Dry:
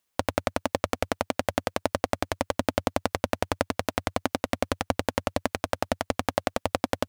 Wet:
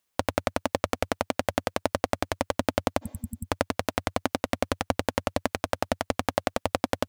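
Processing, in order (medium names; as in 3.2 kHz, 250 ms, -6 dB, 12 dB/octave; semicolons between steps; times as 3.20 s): spectral replace 3.05–3.43 s, 250–7600 Hz both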